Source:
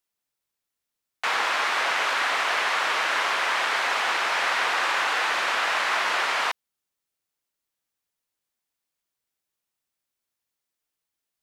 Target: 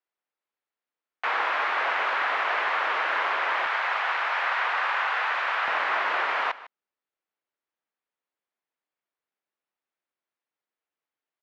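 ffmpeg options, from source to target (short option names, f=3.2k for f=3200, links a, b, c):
-af "asetnsamples=n=441:p=0,asendcmd='3.66 highpass f 670;5.68 highpass f 280',highpass=340,lowpass=2.2k,aecho=1:1:152:0.133"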